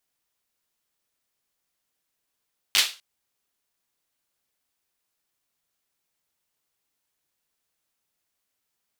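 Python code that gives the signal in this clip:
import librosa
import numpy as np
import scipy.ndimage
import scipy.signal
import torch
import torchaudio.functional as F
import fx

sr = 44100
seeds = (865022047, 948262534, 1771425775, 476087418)

y = fx.drum_clap(sr, seeds[0], length_s=0.25, bursts=4, spacing_ms=10, hz=3300.0, decay_s=0.31)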